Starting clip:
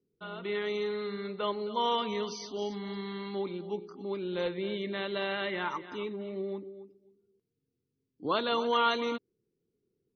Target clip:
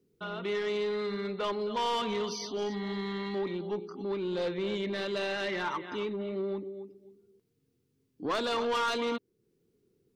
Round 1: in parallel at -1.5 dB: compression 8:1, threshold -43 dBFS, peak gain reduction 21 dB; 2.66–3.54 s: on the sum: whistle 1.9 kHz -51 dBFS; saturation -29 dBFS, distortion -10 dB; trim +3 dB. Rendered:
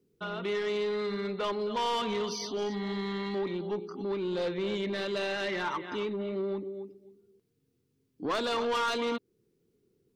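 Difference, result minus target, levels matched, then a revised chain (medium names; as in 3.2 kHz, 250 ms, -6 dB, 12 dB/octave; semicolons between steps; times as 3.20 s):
compression: peak gain reduction -8.5 dB
in parallel at -1.5 dB: compression 8:1, threshold -52.5 dBFS, peak gain reduction 29 dB; 2.66–3.54 s: on the sum: whistle 1.9 kHz -51 dBFS; saturation -29 dBFS, distortion -10 dB; trim +3 dB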